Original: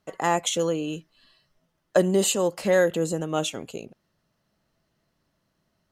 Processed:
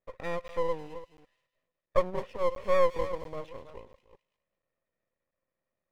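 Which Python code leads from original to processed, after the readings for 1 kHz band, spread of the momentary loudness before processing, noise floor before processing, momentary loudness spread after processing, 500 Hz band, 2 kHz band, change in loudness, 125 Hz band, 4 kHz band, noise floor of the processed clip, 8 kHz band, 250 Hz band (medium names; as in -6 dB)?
-4.5 dB, 16 LU, -75 dBFS, 19 LU, -6.0 dB, -10.5 dB, -7.0 dB, -13.5 dB, -18.0 dB, under -85 dBFS, under -25 dB, -17.0 dB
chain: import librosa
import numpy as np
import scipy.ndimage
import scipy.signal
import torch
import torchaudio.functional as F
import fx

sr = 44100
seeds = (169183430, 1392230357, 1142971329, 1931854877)

y = fx.reverse_delay(x, sr, ms=208, wet_db=-12.5)
y = fx.formant_cascade(y, sr, vowel='e')
y = np.maximum(y, 0.0)
y = fx.echo_wet_highpass(y, sr, ms=209, feedback_pct=30, hz=3200.0, wet_db=-7.0)
y = fx.buffer_crackle(y, sr, first_s=0.48, period_s=0.69, block=512, kind='zero')
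y = y * librosa.db_to_amplitude(3.0)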